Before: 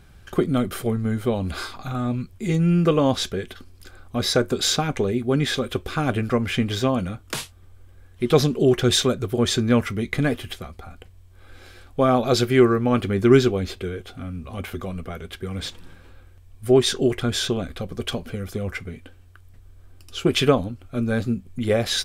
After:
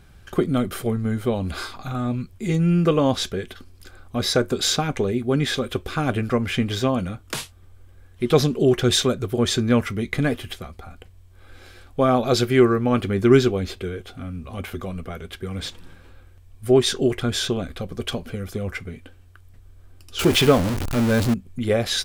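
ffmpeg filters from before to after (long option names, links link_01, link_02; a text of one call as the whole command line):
ffmpeg -i in.wav -filter_complex "[0:a]asettb=1/sr,asplit=3[link_01][link_02][link_03];[link_01]atrim=end=20.194[link_04];[link_02]atrim=start=20.19:end=21.34,asetpts=PTS-STARTPTS,afade=type=in:duration=0.004:curve=qsin,afade=type=out:start_time=1.146:duration=0.004:curve=qsin,aeval=exprs='val(0)+0.5*0.1*sgn(val(0))':channel_layout=same[link_05];[link_03]atrim=start=21.336[link_06];[link_04][link_05]acrossfade=duration=0.004:curve1=hsin:curve2=qsin[link_07];[link_07][link_06]acrossfade=duration=0.004:curve1=qsin:curve2=hsin" out.wav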